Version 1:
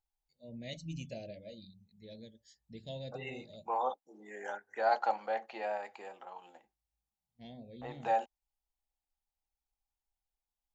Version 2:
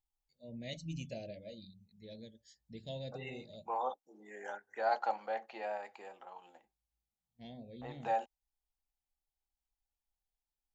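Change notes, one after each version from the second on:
second voice -3.0 dB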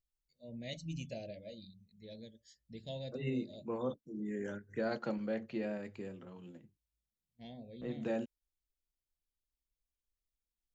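second voice: remove resonant high-pass 800 Hz, resonance Q 8.9

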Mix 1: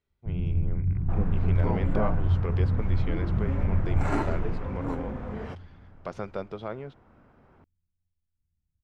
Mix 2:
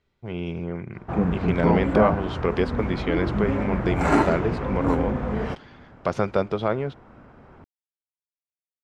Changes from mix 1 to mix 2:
speech +11.5 dB; first sound: muted; second sound +9.5 dB

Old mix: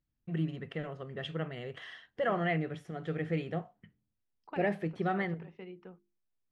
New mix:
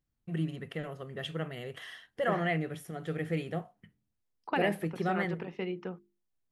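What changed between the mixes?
second voice +11.0 dB; master: remove distance through air 110 m

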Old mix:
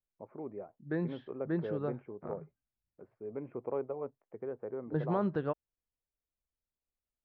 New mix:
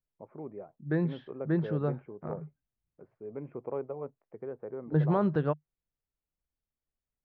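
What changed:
second voice +4.0 dB; master: add peaking EQ 150 Hz +7 dB 0.24 oct

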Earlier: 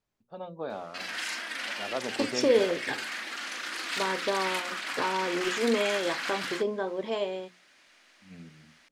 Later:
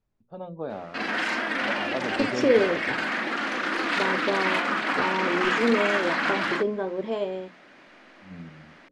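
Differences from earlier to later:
background: remove pre-emphasis filter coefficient 0.8; master: add tilt EQ -2.5 dB/octave

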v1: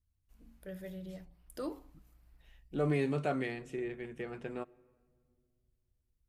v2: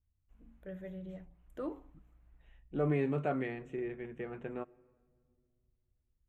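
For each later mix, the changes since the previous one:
master: add boxcar filter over 9 samples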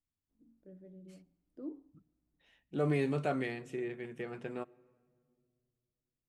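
first voice: add band-pass filter 280 Hz, Q 2.9; master: remove boxcar filter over 9 samples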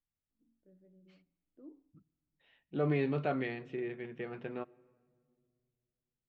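first voice -10.0 dB; master: add low-pass 4 kHz 24 dB/octave

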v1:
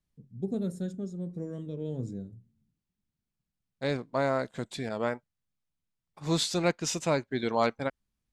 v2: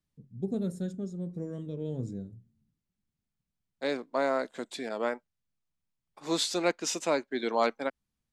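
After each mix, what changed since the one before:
second voice: add high-pass 240 Hz 24 dB/octave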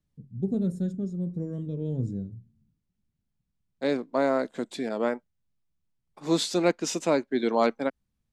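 first voice -3.5 dB; master: add bass shelf 380 Hz +11.5 dB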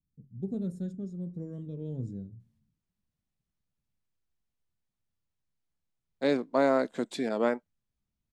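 first voice -6.5 dB; second voice: entry +2.40 s

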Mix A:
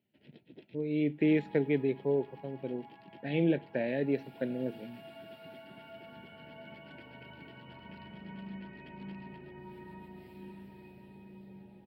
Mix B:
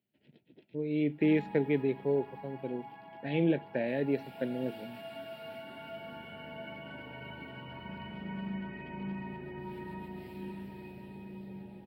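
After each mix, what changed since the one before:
first sound -6.0 dB; second sound +6.0 dB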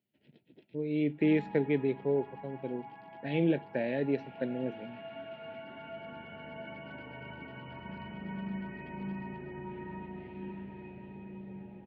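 second sound: add low-pass 2.8 kHz 24 dB/octave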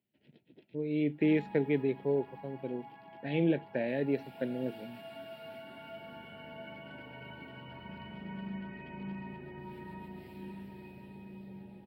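second sound: remove low-pass 2.8 kHz 24 dB/octave; reverb: off

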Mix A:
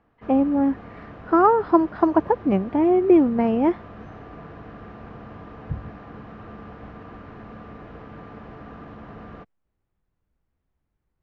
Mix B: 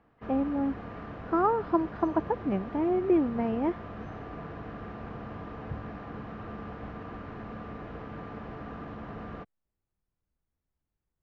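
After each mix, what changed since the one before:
speech -9.0 dB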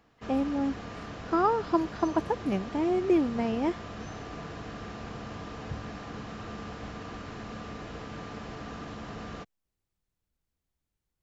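master: remove low-pass 1.8 kHz 12 dB/octave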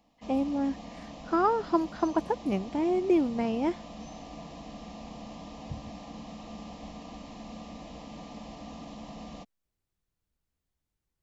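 background: add static phaser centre 400 Hz, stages 6

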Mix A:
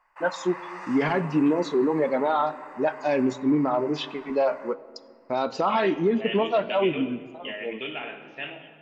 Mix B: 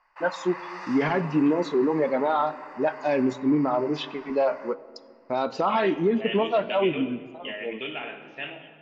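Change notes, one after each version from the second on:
first voice: add distance through air 51 m; background: add resonant low-pass 4.9 kHz, resonance Q 2.5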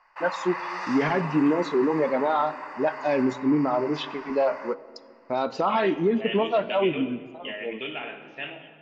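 background +5.5 dB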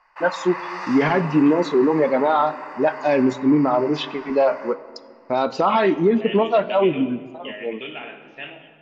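first voice +5.5 dB; background: send +11.0 dB

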